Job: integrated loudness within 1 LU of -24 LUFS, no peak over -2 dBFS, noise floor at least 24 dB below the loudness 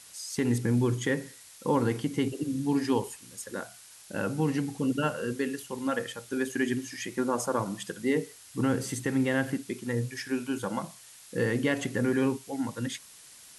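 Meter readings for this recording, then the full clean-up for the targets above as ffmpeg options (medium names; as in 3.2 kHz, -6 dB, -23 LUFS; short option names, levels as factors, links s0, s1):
noise floor -52 dBFS; noise floor target -55 dBFS; loudness -30.5 LUFS; peak level -13.5 dBFS; loudness target -24.0 LUFS
-> -af "afftdn=nr=6:nf=-52"
-af "volume=2.11"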